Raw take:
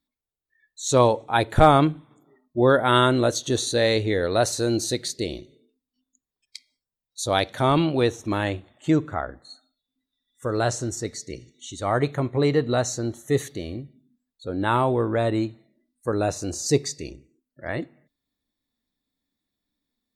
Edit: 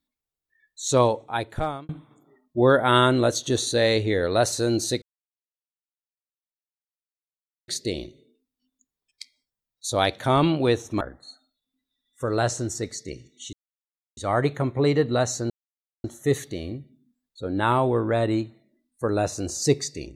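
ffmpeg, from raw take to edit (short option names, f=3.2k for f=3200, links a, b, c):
-filter_complex "[0:a]asplit=6[a][b][c][d][e][f];[a]atrim=end=1.89,asetpts=PTS-STARTPTS,afade=t=out:st=0.82:d=1.07[g];[b]atrim=start=1.89:end=5.02,asetpts=PTS-STARTPTS,afade=t=in:d=0.004:c=hsin,afade=t=out:st=3.126:d=0.004:c=hsin,apad=pad_dur=2.66[h];[c]atrim=start=5.02:end=8.352,asetpts=PTS-STARTPTS,afade=t=in:d=0.004:c=hsin[i];[d]atrim=start=9.228:end=11.75,asetpts=PTS-STARTPTS,afade=t=out:st=2.518:d=0.004:c=hsin,apad=pad_dur=0.64[j];[e]atrim=start=11.75:end=13.08,asetpts=PTS-STARTPTS,afade=t=in:d=0.004:c=hsin,afade=t=out:st=1.326:d=0.004:c=hsin,apad=pad_dur=0.54[k];[f]atrim=start=13.08,asetpts=PTS-STARTPTS,afade=t=in:d=0.004:c=hsin[l];[g][h][i]concat=n=3:v=0:a=1[m];[j][k][l]concat=n=3:v=0:a=1[n];[m][n]acrossfade=d=0.004:c1=hsin:c2=hsin"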